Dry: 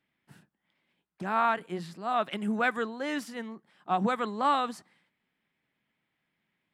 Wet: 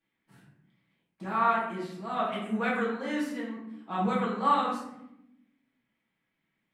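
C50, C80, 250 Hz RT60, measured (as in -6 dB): 3.0 dB, 6.0 dB, 1.4 s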